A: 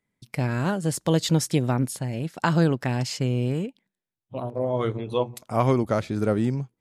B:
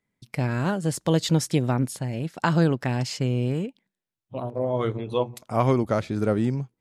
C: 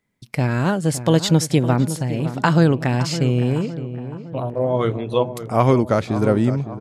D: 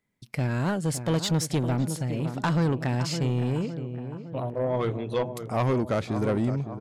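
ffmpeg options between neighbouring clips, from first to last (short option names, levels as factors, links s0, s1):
-af "highshelf=f=9100:g=-4.5"
-filter_complex "[0:a]asplit=2[s0][s1];[s1]adelay=561,lowpass=f=1500:p=1,volume=0.266,asplit=2[s2][s3];[s3]adelay=561,lowpass=f=1500:p=1,volume=0.55,asplit=2[s4][s5];[s5]adelay=561,lowpass=f=1500:p=1,volume=0.55,asplit=2[s6][s7];[s7]adelay=561,lowpass=f=1500:p=1,volume=0.55,asplit=2[s8][s9];[s9]adelay=561,lowpass=f=1500:p=1,volume=0.55,asplit=2[s10][s11];[s11]adelay=561,lowpass=f=1500:p=1,volume=0.55[s12];[s0][s2][s4][s6][s8][s10][s12]amix=inputs=7:normalize=0,volume=1.88"
-af "asoftclip=type=tanh:threshold=0.2,volume=0.562"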